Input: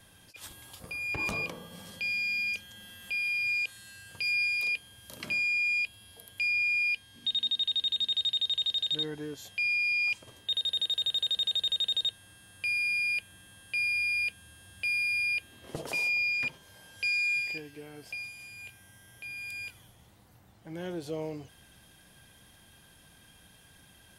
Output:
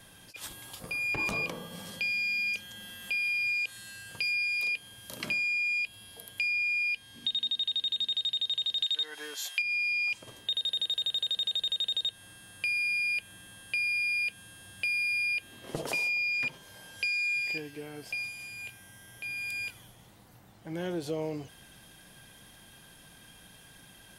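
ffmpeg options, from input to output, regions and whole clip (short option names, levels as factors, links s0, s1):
-filter_complex "[0:a]asettb=1/sr,asplit=3[s0][s1][s2];[s0]atrim=end=8.824[s3];[s1]atrim=start=8.82:end=9.62,asetpts=PTS-STARTPTS,afade=t=in:d=0.004:c=qsin,afade=t=out:st=0.796:d=0.004:c=qsin,highpass=1100,acontrast=63[s4];[s2]atrim=start=9.616[s5];[s3][s4]acrossfade=d=0.004:c1=hsin:c2=qsin[s6];[s6][s5]acrossfade=d=0.004:c1=qsin:c2=hsin,equalizer=f=78:t=o:w=0.34:g=-14,acompressor=threshold=0.0251:ratio=6,volume=1.58"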